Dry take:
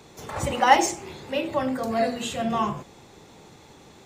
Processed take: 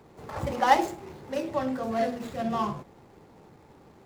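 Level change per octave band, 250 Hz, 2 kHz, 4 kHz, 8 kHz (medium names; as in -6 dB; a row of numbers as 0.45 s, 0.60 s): -3.0 dB, -6.0 dB, -8.5 dB, -14.0 dB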